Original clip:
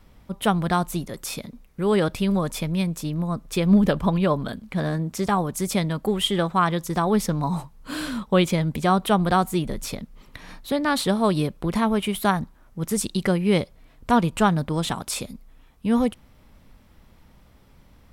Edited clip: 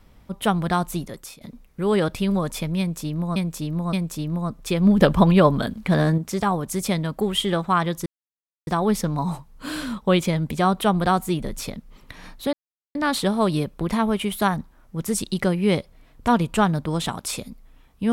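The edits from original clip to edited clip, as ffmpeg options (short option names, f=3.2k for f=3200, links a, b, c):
-filter_complex "[0:a]asplit=8[a][b][c][d][e][f][g][h];[a]atrim=end=1.41,asetpts=PTS-STARTPTS,afade=t=out:st=1.06:d=0.35:silence=0.0630957[i];[b]atrim=start=1.41:end=3.362,asetpts=PTS-STARTPTS,afade=t=in:d=0.004:c=hsin:silence=0.0630957[j];[c]atrim=start=2.788:end=3.362[k];[d]atrim=start=2.788:end=3.872[l];[e]atrim=start=3.868:end=5.042,asetpts=PTS-STARTPTS,volume=6dB[m];[f]atrim=start=5.038:end=6.92,asetpts=PTS-STARTPTS,afade=t=out:st=1.878:d=0.004:c=hsin,apad=pad_dur=0.61[n];[g]atrim=start=6.92:end=10.78,asetpts=PTS-STARTPTS,afade=t=in:d=0.004:c=hsin,afade=t=out:st=3.856:d=0.004:c=hsin,apad=pad_dur=0.42[o];[h]atrim=start=10.78,asetpts=PTS-STARTPTS,afade=t=in:d=0.004:c=hsin[p];[i][j]concat=n=2:v=0:a=1[q];[q][k]acrossfade=d=0.004:c1=hsin:c2=hsin[r];[r][l]acrossfade=d=0.004:c1=hsin:c2=hsin[s];[s][m]acrossfade=d=0.004:c1=hsin:c2=hsin[t];[n][o][p]concat=n=3:v=0:a=1[u];[t][u]acrossfade=d=0.004:c1=hsin:c2=hsin"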